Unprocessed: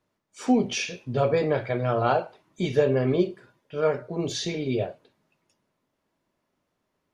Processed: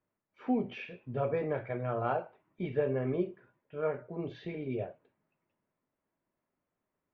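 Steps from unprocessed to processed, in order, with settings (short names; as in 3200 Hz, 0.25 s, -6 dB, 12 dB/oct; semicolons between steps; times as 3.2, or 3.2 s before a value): LPF 2500 Hz 24 dB/oct; gain -9 dB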